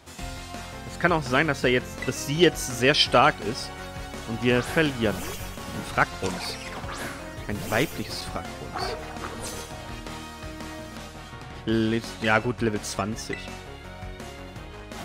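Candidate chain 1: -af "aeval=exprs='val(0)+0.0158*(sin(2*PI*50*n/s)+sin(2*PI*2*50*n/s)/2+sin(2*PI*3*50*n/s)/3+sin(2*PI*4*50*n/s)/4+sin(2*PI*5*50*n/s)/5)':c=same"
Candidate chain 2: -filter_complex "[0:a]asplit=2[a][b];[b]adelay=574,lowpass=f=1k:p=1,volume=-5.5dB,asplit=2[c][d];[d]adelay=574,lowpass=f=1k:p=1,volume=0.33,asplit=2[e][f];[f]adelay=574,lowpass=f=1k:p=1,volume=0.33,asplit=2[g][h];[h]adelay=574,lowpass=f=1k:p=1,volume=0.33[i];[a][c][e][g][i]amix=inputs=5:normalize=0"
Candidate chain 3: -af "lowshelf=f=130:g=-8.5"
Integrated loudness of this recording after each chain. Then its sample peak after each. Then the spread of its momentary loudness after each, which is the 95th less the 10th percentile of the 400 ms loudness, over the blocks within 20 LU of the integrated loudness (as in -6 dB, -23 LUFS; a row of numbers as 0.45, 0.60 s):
-26.5, -25.5, -26.5 LUFS; -6.0, -6.0, -5.5 dBFS; 15, 16, 18 LU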